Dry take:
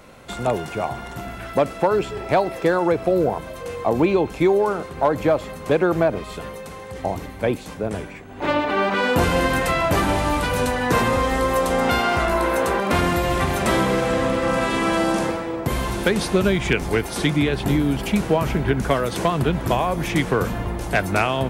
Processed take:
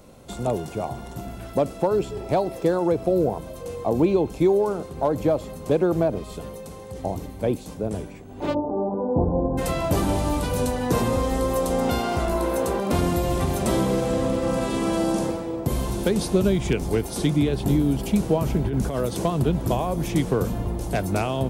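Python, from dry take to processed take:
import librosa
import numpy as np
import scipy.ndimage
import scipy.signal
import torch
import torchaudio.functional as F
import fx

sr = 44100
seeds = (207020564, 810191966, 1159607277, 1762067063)

y = fx.ellip_lowpass(x, sr, hz=920.0, order=4, stop_db=70, at=(8.53, 9.57), fade=0.02)
y = fx.over_compress(y, sr, threshold_db=-22.0, ratio=-1.0, at=(18.64, 19.06))
y = fx.peak_eq(y, sr, hz=1800.0, db=-13.0, octaves=1.9)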